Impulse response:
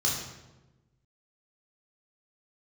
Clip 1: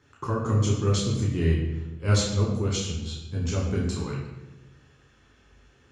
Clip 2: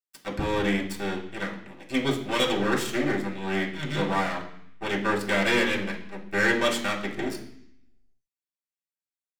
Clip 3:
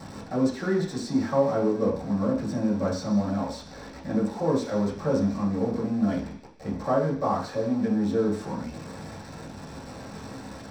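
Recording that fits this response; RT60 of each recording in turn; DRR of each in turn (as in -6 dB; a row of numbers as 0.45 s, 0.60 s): 1; 1.1 s, 0.65 s, no single decay rate; -4.5 dB, -4.5 dB, -7.0 dB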